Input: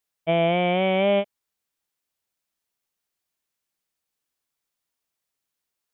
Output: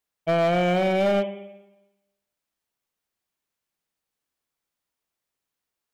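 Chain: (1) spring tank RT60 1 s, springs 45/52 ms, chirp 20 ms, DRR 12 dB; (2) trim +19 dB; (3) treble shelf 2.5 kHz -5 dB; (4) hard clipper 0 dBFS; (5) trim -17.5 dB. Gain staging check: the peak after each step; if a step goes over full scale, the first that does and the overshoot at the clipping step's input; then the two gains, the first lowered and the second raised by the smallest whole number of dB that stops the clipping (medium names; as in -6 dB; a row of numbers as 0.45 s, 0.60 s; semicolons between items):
-10.0 dBFS, +9.0 dBFS, +8.5 dBFS, 0.0 dBFS, -17.5 dBFS; step 2, 8.5 dB; step 2 +10 dB, step 5 -8.5 dB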